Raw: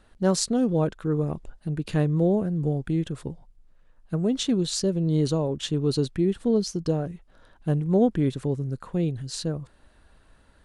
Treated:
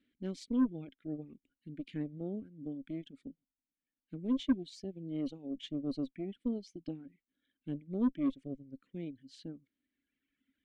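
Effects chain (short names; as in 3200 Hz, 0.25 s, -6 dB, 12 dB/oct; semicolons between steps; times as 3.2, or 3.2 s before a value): vowel filter i; added harmonics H 4 -24 dB, 6 -19 dB, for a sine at -17.5 dBFS; reverb removal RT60 1.9 s; gain -1.5 dB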